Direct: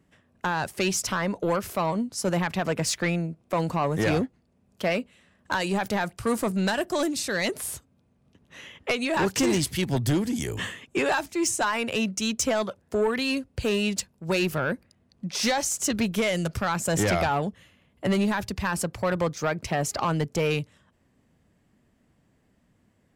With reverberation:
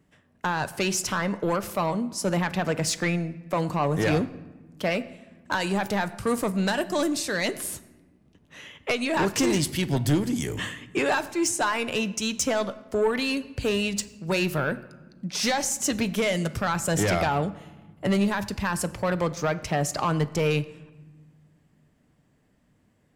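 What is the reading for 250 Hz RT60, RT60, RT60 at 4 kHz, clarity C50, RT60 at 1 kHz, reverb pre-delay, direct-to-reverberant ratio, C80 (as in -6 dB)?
2.1 s, 1.3 s, 0.75 s, 16.5 dB, 1.2 s, 7 ms, 11.5 dB, 18.0 dB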